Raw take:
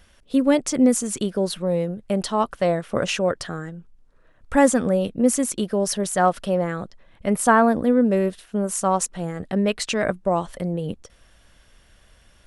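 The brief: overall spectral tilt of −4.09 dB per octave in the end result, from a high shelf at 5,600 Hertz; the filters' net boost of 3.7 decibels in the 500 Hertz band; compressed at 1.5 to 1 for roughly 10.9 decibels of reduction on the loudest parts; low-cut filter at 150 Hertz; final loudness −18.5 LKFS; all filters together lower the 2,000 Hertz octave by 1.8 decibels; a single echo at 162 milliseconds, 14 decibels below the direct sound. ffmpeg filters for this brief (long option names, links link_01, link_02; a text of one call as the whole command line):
ffmpeg -i in.wav -af "highpass=150,equalizer=frequency=500:width_type=o:gain=4.5,equalizer=frequency=2000:width_type=o:gain=-3.5,highshelf=frequency=5600:gain=7,acompressor=threshold=-40dB:ratio=1.5,aecho=1:1:162:0.2,volume=10.5dB" out.wav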